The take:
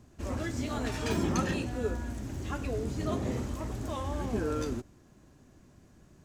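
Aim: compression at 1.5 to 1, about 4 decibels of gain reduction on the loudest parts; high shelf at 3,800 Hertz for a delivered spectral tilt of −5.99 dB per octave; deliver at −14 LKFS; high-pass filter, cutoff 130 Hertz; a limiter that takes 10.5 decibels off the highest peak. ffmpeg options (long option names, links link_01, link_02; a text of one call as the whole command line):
ffmpeg -i in.wav -af "highpass=130,highshelf=frequency=3800:gain=-6.5,acompressor=threshold=-37dB:ratio=1.5,volume=27dB,alimiter=limit=-5dB:level=0:latency=1" out.wav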